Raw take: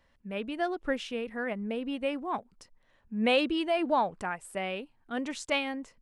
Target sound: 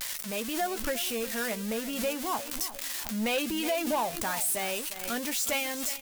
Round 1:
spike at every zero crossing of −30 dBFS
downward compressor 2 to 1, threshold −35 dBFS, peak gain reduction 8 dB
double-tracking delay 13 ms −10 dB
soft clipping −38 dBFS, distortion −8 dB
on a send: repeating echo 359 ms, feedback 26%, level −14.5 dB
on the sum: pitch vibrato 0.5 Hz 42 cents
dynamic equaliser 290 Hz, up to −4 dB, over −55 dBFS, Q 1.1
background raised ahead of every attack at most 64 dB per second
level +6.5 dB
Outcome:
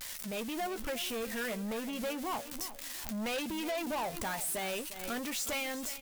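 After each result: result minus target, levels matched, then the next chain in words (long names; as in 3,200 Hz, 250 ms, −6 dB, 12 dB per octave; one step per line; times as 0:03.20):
soft clipping: distortion +9 dB; spike at every zero crossing: distortion −6 dB
spike at every zero crossing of −30 dBFS
downward compressor 2 to 1, threshold −35 dBFS, peak gain reduction 8 dB
double-tracking delay 13 ms −10 dB
soft clipping −28 dBFS, distortion −17 dB
on a send: repeating echo 359 ms, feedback 26%, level −14.5 dB
on the sum: pitch vibrato 0.5 Hz 42 cents
dynamic equaliser 290 Hz, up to −4 dB, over −55 dBFS, Q 1.1
background raised ahead of every attack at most 64 dB per second
level +6.5 dB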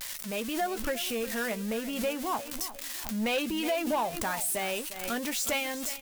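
spike at every zero crossing: distortion −6 dB
spike at every zero crossing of −23.5 dBFS
downward compressor 2 to 1, threshold −35 dBFS, peak gain reduction 8 dB
double-tracking delay 13 ms −10 dB
soft clipping −28 dBFS, distortion −17 dB
on a send: repeating echo 359 ms, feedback 26%, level −14.5 dB
on the sum: pitch vibrato 0.5 Hz 42 cents
dynamic equaliser 290 Hz, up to −4 dB, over −55 dBFS, Q 1.1
background raised ahead of every attack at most 64 dB per second
level +6.5 dB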